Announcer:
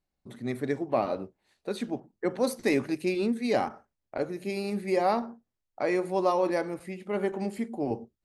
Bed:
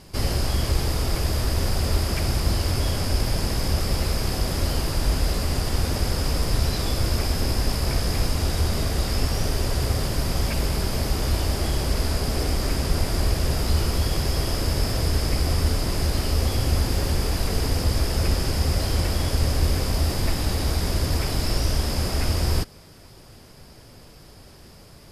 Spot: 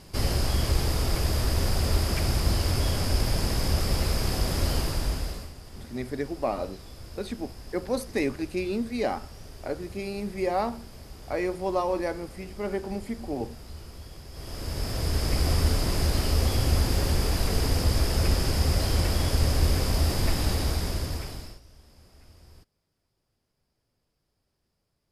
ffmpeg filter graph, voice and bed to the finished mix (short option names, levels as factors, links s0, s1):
-filter_complex "[0:a]adelay=5500,volume=0.841[s0];[1:a]volume=7.08,afade=t=out:st=4.77:d=0.76:silence=0.11885,afade=t=in:st=14.31:d=1.16:silence=0.112202,afade=t=out:st=20.49:d=1.11:silence=0.0354813[s1];[s0][s1]amix=inputs=2:normalize=0"